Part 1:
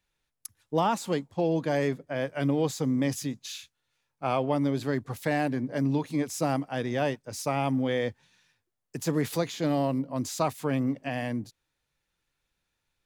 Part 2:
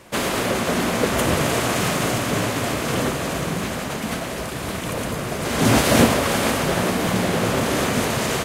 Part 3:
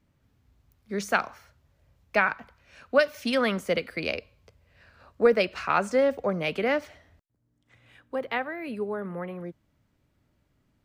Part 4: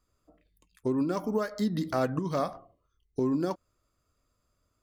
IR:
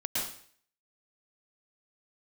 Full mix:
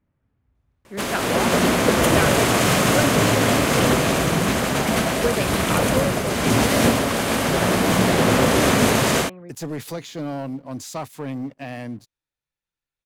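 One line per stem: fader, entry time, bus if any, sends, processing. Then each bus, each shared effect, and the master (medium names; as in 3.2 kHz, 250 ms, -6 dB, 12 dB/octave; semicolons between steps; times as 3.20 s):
-7.5 dB, 0.55 s, muted 5.00–7.90 s, no send, waveshaping leveller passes 2
-5.5 dB, 0.85 s, send -13.5 dB, level rider gain up to 11.5 dB
-3.5 dB, 0.00 s, no send, level-controlled noise filter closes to 2.1 kHz, open at -22.5 dBFS
-9.0 dB, 1.45 s, no send, none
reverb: on, RT60 0.55 s, pre-delay 104 ms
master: none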